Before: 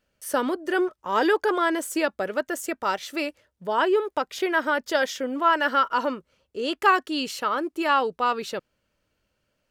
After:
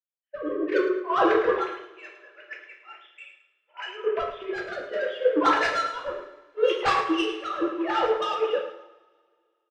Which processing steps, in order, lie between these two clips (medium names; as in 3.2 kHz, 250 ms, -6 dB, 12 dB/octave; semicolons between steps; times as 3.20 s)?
formants replaced by sine waves; 1.63–4.04 s: Bessel high-pass 2.7 kHz, order 2; compression 12:1, threshold -24 dBFS, peak gain reduction 10 dB; saturation -26 dBFS, distortion -14 dB; rotary cabinet horn 0.7 Hz; feedback delay 109 ms, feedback 44%, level -8.5 dB; two-slope reverb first 0.5 s, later 4.3 s, from -18 dB, DRR -1.5 dB; three bands expanded up and down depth 100%; trim +5 dB